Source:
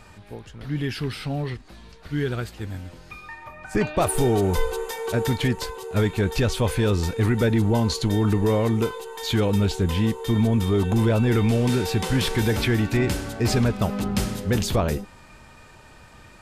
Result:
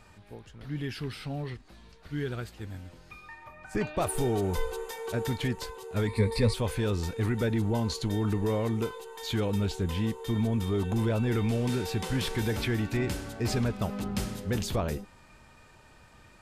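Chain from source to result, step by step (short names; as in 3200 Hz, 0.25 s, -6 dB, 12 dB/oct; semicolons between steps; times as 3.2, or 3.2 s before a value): 6.07–6.54 ripple EQ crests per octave 0.94, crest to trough 16 dB; gain -7.5 dB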